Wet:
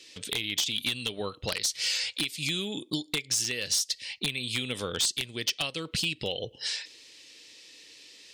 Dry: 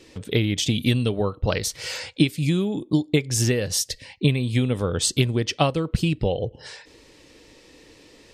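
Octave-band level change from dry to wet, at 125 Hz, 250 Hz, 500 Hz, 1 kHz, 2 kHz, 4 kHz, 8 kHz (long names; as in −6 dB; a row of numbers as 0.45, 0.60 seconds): −19.0, −15.0, −12.0, −11.5, −2.0, +1.0, −2.0 decibels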